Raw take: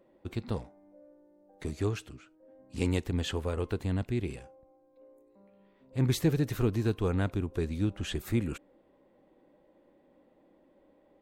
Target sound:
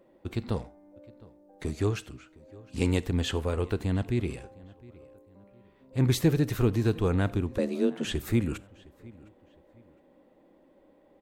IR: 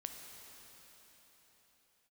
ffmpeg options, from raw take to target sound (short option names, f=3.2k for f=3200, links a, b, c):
-filter_complex "[0:a]asplit=2[a][b];[b]adelay=711,lowpass=f=3.8k:p=1,volume=-22.5dB,asplit=2[c][d];[d]adelay=711,lowpass=f=3.8k:p=1,volume=0.35[e];[a][c][e]amix=inputs=3:normalize=0,asettb=1/sr,asplit=3[f][g][h];[f]atrim=end=7.584[i];[g]atrim=start=7.58:end=8.05,asetpts=PTS-STARTPTS,afade=t=in:d=0.004:c=qsin,afade=t=out:st=0.466:d=0.004:c=qsin,afreqshift=130[j];[h]atrim=start=8.046[k];[i][j]acrossfade=d=0.004:c1=hsin:c2=qsin[l];[l][k]acrossfade=d=0.004:c1=qsin:c2=hsin,asplit=2[m][n];[1:a]atrim=start_sample=2205,atrim=end_sample=4410[o];[n][o]afir=irnorm=-1:irlink=0,volume=-3dB[p];[m][p]amix=inputs=2:normalize=0"